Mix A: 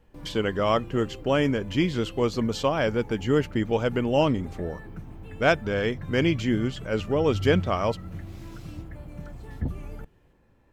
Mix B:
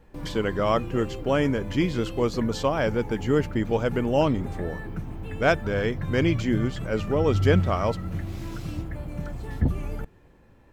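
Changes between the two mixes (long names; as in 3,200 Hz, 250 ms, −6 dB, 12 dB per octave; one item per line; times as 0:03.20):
speech: add parametric band 2,900 Hz −4 dB 0.56 octaves
background +6.5 dB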